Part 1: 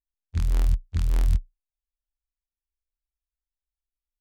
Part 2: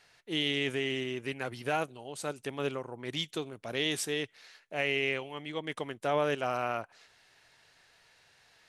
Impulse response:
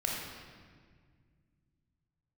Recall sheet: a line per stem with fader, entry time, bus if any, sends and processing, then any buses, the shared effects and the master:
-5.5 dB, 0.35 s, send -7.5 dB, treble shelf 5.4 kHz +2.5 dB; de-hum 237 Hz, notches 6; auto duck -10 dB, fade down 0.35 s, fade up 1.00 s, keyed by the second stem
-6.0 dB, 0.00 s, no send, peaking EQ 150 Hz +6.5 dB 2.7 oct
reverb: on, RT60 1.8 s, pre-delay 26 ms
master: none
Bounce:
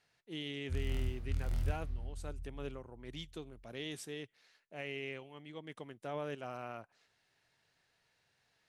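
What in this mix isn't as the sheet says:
stem 1 -5.5 dB -> -13.0 dB; stem 2 -6.0 dB -> -13.5 dB

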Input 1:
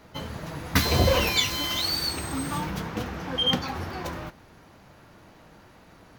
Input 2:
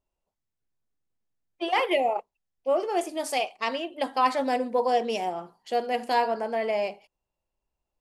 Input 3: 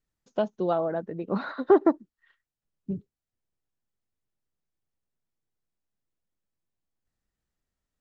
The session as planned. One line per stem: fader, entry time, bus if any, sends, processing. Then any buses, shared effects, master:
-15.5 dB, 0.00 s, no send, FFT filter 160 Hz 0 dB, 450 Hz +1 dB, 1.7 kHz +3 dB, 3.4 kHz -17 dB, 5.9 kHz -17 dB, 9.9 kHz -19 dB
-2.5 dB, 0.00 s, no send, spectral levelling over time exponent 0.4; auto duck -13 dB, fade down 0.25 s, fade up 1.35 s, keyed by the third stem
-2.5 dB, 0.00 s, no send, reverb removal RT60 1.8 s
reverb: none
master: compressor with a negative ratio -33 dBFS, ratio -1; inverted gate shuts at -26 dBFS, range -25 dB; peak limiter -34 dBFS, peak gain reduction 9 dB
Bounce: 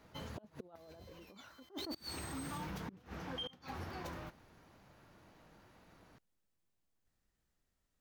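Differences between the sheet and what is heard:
stem 1: missing FFT filter 160 Hz 0 dB, 450 Hz +1 dB, 1.7 kHz +3 dB, 3.4 kHz -17 dB, 5.9 kHz -17 dB, 9.9 kHz -19 dB; stem 2: muted; stem 3: missing reverb removal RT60 1.8 s

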